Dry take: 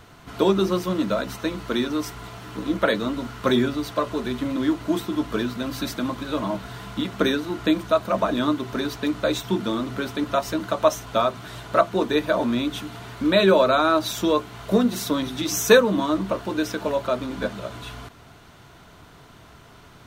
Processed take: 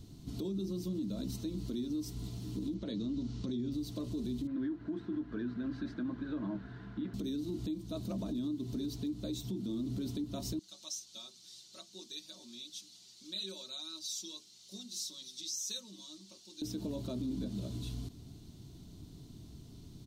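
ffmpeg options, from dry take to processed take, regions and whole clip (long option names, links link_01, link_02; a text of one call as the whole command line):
ffmpeg -i in.wav -filter_complex "[0:a]asettb=1/sr,asplit=3[link_01][link_02][link_03];[link_01]atrim=end=2.744[link_04];[link_02]atrim=start=2.74:end=3.72,asetpts=PTS-STARTPTS,afade=type=in:duration=0.004:curve=qsin,afade=type=out:start_time=0.976:duration=0.004:curve=qsin,lowpass=frequency=6600:width=0.5412,lowpass=frequency=6600:width=1.3066,acompressor=threshold=-21dB:ratio=5:attack=3.2:release=140:knee=1:detection=peak[link_05];[link_03]atrim=start=3.716[link_06];[link_04][link_05]acrossfade=duration=0.004:curve1=hsin:curve2=qsin[link_07];[link_07][link_06]acrossfade=duration=0.004:curve1=qsin:curve2=hsin,asettb=1/sr,asplit=3[link_08][link_09][link_10];[link_08]atrim=end=4.474[link_11];[link_09]atrim=start=4.47:end=7.14,asetpts=PTS-STARTPTS,afade=type=in:duration=0.004:curve=qsin,afade=type=out:start_time=2.666:duration=0.004:curve=qsin,lowpass=frequency=1600:width_type=q:width=7.7,lowshelf=frequency=270:gain=-11[link_12];[link_10]atrim=start=7.136[link_13];[link_11][link_12]acrossfade=duration=0.004:curve1=hsin:curve2=qsin[link_14];[link_14][link_13]acrossfade=duration=0.004:curve1=qsin:curve2=hsin,asettb=1/sr,asplit=3[link_15][link_16][link_17];[link_15]atrim=end=10.594[link_18];[link_16]atrim=start=10.59:end=16.62,asetpts=PTS-STARTPTS,afade=type=in:duration=0.004:curve=qsin,afade=type=out:start_time=6.026:duration=0.004:curve=qsin,bandpass=frequency=5600:width_type=q:width=1.6,aecho=1:1:5.4:0.83,atrim=end_sample=265923[link_19];[link_17]atrim=start=16.616[link_20];[link_18][link_19]acrossfade=duration=0.004:curve1=hsin:curve2=qsin[link_21];[link_21][link_20]acrossfade=duration=0.004:curve1=qsin:curve2=hsin,firequalizer=gain_entry='entry(300,0);entry(490,-16);entry(1400,-29);entry(4100,-5);entry(11000,-7)':delay=0.05:min_phase=1,acompressor=threshold=-31dB:ratio=10,alimiter=level_in=6dB:limit=-24dB:level=0:latency=1:release=25,volume=-6dB" out.wav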